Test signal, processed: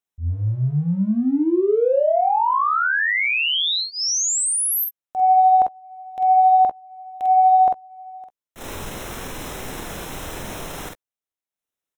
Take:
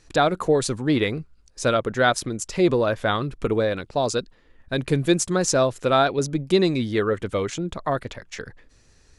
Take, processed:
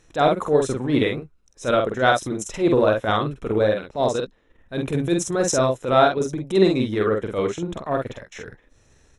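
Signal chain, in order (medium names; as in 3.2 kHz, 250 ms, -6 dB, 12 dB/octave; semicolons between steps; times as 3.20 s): peaking EQ 530 Hz +4 dB 2.4 oct; transient shaper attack -11 dB, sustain -7 dB; vibrato 13 Hz 7.2 cents; Butterworth band-stop 4.6 kHz, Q 5; early reflections 47 ms -3.5 dB, 62 ms -17 dB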